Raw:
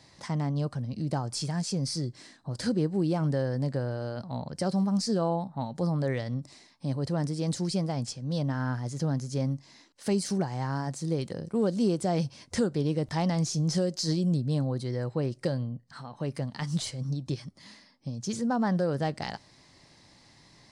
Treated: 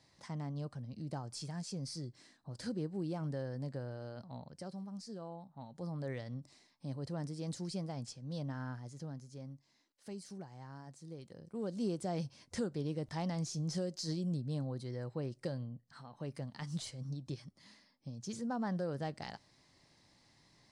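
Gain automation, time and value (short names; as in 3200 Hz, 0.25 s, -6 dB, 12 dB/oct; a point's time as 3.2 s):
4.28 s -11.5 dB
4.81 s -19 dB
5.36 s -19 dB
6.12 s -11 dB
8.57 s -11 dB
9.37 s -19 dB
11.22 s -19 dB
11.85 s -10 dB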